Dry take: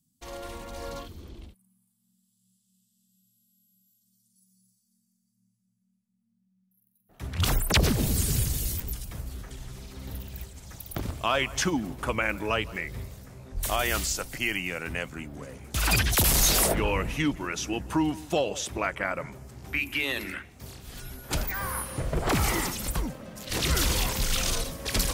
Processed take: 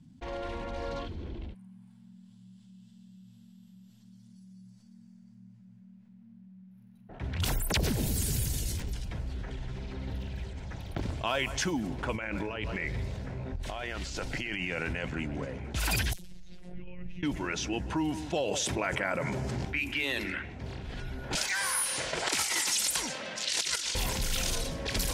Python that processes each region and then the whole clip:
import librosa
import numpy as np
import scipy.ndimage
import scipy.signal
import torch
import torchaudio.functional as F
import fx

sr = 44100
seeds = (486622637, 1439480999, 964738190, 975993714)

y = fx.chain(x, sr, fx.over_compress(threshold_db=-35.0, ratio=-1.0),
    fx.echo_single(ms=126, db=-17.5), at=(12.14, 15.45))
y = fx.chain(y, sr, fx.over_compress(threshold_db=-28.0, ratio=-0.5),
    fx.tone_stack(knobs='10-0-1'),
    fx.robotise(hz=179.0), at=(16.13, 17.23))
y = fx.chain(y, sr, fx.highpass(hz=89.0, slope=12),
    fx.env_flatten(amount_pct=70), at=(18.48, 19.65))
y = fx.chain(y, sr, fx.weighting(curve='ITU-R 468'),
    fx.over_compress(threshold_db=-25.0, ratio=-0.5), at=(21.35, 23.95))
y = fx.env_lowpass(y, sr, base_hz=2000.0, full_db=-22.0)
y = fx.notch(y, sr, hz=1200.0, q=6.6)
y = fx.env_flatten(y, sr, amount_pct=50)
y = y * librosa.db_to_amplitude(-7.5)